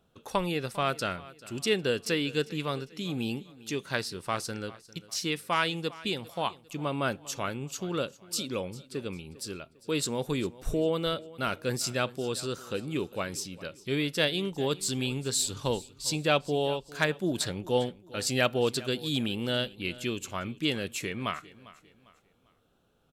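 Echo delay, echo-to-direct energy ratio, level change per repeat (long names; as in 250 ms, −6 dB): 400 ms, −19.0 dB, −8.5 dB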